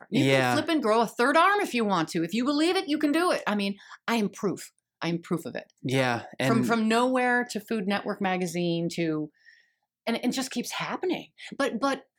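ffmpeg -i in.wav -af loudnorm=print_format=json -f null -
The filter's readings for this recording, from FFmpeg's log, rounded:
"input_i" : "-26.9",
"input_tp" : "-8.1",
"input_lra" : "6.1",
"input_thresh" : "-37.4",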